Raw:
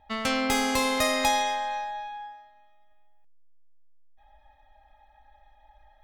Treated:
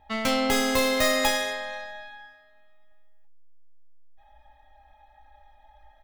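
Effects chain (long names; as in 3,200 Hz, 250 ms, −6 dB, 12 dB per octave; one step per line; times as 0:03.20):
stylus tracing distortion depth 0.13 ms
ambience of single reflections 15 ms −8 dB, 32 ms −8 dB
level +1 dB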